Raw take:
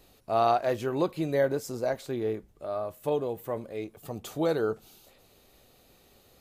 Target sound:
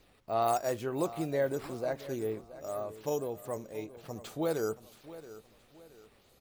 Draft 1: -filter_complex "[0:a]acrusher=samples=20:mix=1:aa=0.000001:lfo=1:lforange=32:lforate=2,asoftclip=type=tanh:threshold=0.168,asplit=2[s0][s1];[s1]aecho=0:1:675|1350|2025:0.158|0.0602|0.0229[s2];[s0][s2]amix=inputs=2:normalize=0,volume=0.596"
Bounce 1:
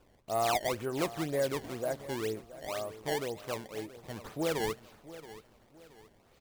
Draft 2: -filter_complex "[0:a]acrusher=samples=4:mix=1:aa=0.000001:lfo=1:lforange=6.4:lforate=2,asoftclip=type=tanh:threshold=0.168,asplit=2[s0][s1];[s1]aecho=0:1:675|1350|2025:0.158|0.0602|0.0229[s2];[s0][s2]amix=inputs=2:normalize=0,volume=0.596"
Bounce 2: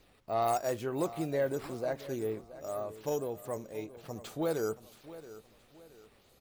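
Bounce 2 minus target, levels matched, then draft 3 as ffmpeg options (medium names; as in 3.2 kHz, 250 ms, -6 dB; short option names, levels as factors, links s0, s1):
saturation: distortion +10 dB
-filter_complex "[0:a]acrusher=samples=4:mix=1:aa=0.000001:lfo=1:lforange=6.4:lforate=2,asoftclip=type=tanh:threshold=0.335,asplit=2[s0][s1];[s1]aecho=0:1:675|1350|2025:0.158|0.0602|0.0229[s2];[s0][s2]amix=inputs=2:normalize=0,volume=0.596"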